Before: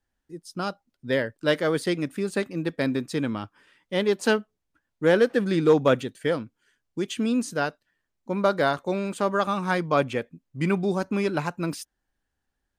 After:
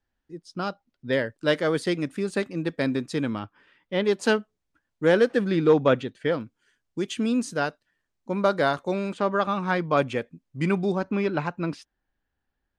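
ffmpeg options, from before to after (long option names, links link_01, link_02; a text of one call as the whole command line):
ffmpeg -i in.wav -af "asetnsamples=nb_out_samples=441:pad=0,asendcmd='1.13 lowpass f 9000;3.39 lowpass f 3700;4.05 lowpass f 9100;5.46 lowpass f 4300;6.41 lowpass f 9900;9.13 lowpass f 4200;9.97 lowpass f 8900;10.92 lowpass f 3600',lowpass=5200" out.wav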